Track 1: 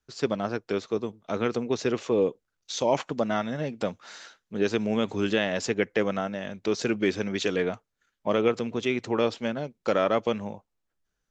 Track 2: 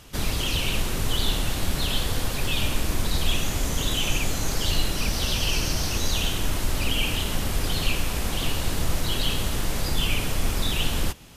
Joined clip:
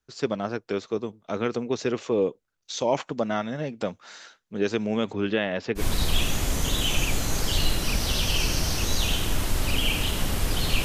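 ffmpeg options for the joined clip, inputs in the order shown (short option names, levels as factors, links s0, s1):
-filter_complex "[0:a]asettb=1/sr,asplit=3[s0][s1][s2];[s0]atrim=end=5.134[s3];[s1]atrim=start=5.13:end=5.83,asetpts=PTS-STARTPTS,afade=t=in:d=0.004:c=qsin,afade=t=out:st=0.696:d=0.004:c=qsin,acrossover=split=4400[s4][s5];[s5]adelay=670[s6];[s4][s6]amix=inputs=2:normalize=0,atrim=end_sample=30870[s7];[s2]atrim=start=5.826[s8];[s3][s7]acrossfade=d=0.004:c1=hsin:c2=qsin[s9];[s9][s8]acrossfade=d=0.004:c1=qsin:c2=hsin,apad=whole_dur=10.84,atrim=end=10.84,atrim=end=5.83,asetpts=PTS-STARTPTS[s10];[1:a]atrim=start=2.88:end=7.97,asetpts=PTS-STARTPTS[s11];[s10][s11]acrossfade=d=0.08:c1=tri:c2=tri"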